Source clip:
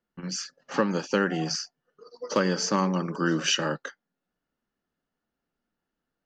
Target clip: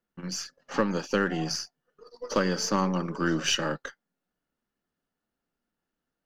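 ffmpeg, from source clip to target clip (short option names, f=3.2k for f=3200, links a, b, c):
-af "aeval=exprs='if(lt(val(0),0),0.708*val(0),val(0))':c=same"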